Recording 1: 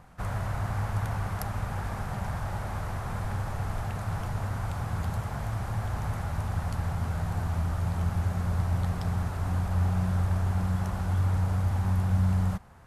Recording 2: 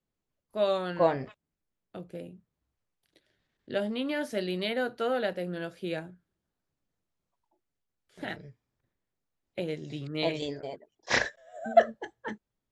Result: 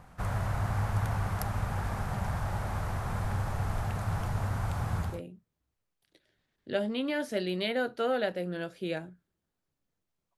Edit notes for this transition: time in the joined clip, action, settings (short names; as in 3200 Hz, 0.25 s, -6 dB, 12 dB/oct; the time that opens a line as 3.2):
recording 1
5.06 switch to recording 2 from 2.07 s, crossfade 0.32 s equal-power